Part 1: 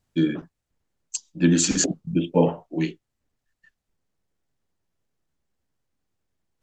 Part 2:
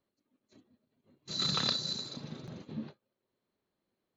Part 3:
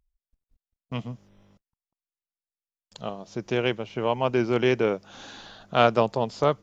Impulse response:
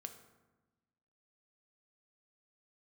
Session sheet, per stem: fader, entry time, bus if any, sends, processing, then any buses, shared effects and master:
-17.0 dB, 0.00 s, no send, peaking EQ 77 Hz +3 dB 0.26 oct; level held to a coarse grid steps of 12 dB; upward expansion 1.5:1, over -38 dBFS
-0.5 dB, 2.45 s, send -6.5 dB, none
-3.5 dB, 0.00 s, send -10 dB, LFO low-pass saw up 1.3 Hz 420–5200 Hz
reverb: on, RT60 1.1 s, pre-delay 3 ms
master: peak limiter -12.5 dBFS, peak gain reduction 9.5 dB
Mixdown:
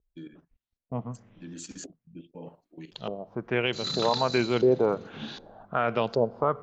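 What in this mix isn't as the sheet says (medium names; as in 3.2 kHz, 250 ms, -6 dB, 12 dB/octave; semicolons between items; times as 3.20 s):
stem 1: missing upward expansion 1.5:1, over -38 dBFS; stem 2: send off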